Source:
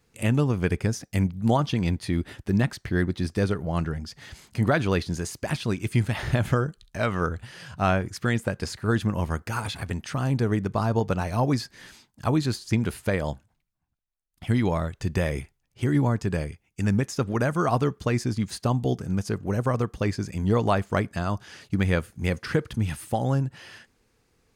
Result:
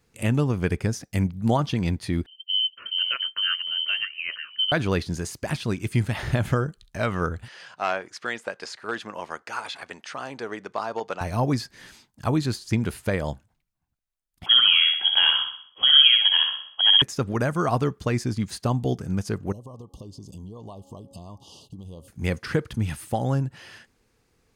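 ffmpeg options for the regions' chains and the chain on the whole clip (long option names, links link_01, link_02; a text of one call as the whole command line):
ffmpeg -i in.wav -filter_complex "[0:a]asettb=1/sr,asplit=3[link_01][link_02][link_03];[link_01]atrim=end=2.264[link_04];[link_02]atrim=start=2.26:end=4.72,asetpts=PTS-STARTPTS,afade=type=in:duration=0.004:curve=qsin,afade=type=out:start_time=2.456:duration=0.004:curve=qsin,bandreject=frequency=2400:width=5.4,acrossover=split=250[link_05][link_06];[link_06]adelay=510[link_07];[link_05][link_07]amix=inputs=2:normalize=0,atrim=end_sample=108486,lowpass=frequency=2700:width_type=q:width=0.5098,lowpass=frequency=2700:width_type=q:width=0.6013,lowpass=frequency=2700:width_type=q:width=0.9,lowpass=frequency=2700:width_type=q:width=2.563,afreqshift=-3200[link_08];[link_03]atrim=start=4.716[link_09];[link_04][link_08]acrossfade=duration=0.004:curve1=hsin:curve2=qsin[link_10];[link_10][link_09]acrossfade=duration=0.004:curve1=qsin:curve2=hsin,asettb=1/sr,asplit=3[link_11][link_12][link_13];[link_11]atrim=end=7.484[link_14];[link_12]atrim=start=7.48:end=11.21,asetpts=PTS-STARTPTS,afade=type=in:duration=0.004:curve=qsin,afade=type=out:start_time=3.726:duration=0.004:curve=qsin,aeval=exprs='clip(val(0),-1,0.15)':channel_layout=same,highpass=530,lowpass=6400[link_15];[link_13]atrim=start=11.206[link_16];[link_14][link_15]acrossfade=duration=0.004:curve1=hsin:curve2=qsin[link_17];[link_17][link_16]acrossfade=duration=0.004:curve1=qsin:curve2=hsin,asettb=1/sr,asplit=3[link_18][link_19][link_20];[link_18]atrim=end=14.464[link_21];[link_19]atrim=start=14.46:end=17.02,asetpts=PTS-STARTPTS,afade=type=in:duration=0.004:curve=qsin,afade=type=out:start_time=2.556:duration=0.004:curve=qsin,acontrast=27,lowpass=frequency=2900:width_type=q:width=0.5098,lowpass=frequency=2900:width_type=q:width=0.6013,lowpass=frequency=2900:width_type=q:width=0.9,lowpass=frequency=2900:width_type=q:width=2.563,afreqshift=-3400,aecho=1:1:63|126|189|252|315|378:0.562|0.259|0.119|0.0547|0.0252|0.0116,atrim=end_sample=112896[link_22];[link_20]atrim=start=17.016[link_23];[link_21][link_22]acrossfade=duration=0.004:curve1=hsin:curve2=qsin[link_24];[link_24][link_23]acrossfade=duration=0.004:curve1=qsin:curve2=hsin,asettb=1/sr,asplit=3[link_25][link_26][link_27];[link_25]atrim=end=19.524[link_28];[link_26]atrim=start=19.52:end=22.08,asetpts=PTS-STARTPTS,afade=type=in:duration=0.004:curve=qsin,afade=type=out:start_time=2.556:duration=0.004:curve=qsin,bandreject=frequency=275.7:width_type=h:width=4,bandreject=frequency=551.4:width_type=h:width=4,bandreject=frequency=827.1:width_type=h:width=4,acompressor=threshold=-37dB:ratio=8:attack=3.2:release=140:knee=1:detection=peak,asuperstop=centerf=1800:order=20:qfactor=1.1[link_29];[link_27]atrim=start=22.076[link_30];[link_28][link_29]acrossfade=duration=0.004:curve1=hsin:curve2=qsin[link_31];[link_31][link_30]acrossfade=duration=0.004:curve1=qsin:curve2=hsin" out.wav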